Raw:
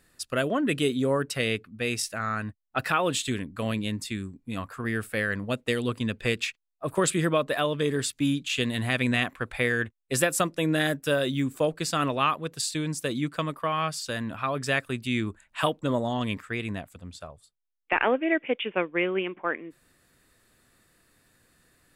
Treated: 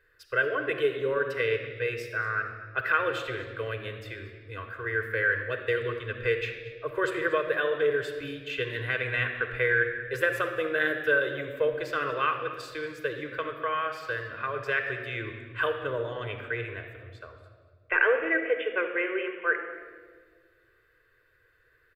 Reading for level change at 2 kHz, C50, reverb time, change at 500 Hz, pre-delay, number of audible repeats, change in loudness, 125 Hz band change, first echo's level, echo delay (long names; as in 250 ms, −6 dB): +3.5 dB, 6.5 dB, 1.6 s, 0.0 dB, 3 ms, 1, −1.0 dB, −7.5 dB, −18.5 dB, 232 ms